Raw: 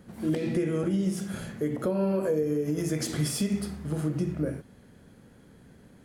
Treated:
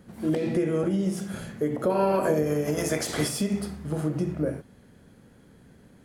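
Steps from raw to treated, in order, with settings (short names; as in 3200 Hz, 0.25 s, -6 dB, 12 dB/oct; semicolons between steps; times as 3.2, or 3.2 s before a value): 1.89–3.28 spectral limiter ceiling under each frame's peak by 15 dB; dynamic EQ 690 Hz, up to +6 dB, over -41 dBFS, Q 0.85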